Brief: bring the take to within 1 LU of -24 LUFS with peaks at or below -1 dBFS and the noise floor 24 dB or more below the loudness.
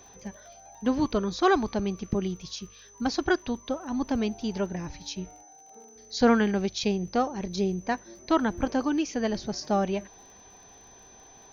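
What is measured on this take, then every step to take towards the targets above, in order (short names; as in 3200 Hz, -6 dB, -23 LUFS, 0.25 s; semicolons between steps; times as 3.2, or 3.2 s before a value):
ticks 40/s; steady tone 6100 Hz; tone level -52 dBFS; loudness -28.0 LUFS; peak -10.5 dBFS; loudness target -24.0 LUFS
-> de-click; notch 6100 Hz, Q 30; gain +4 dB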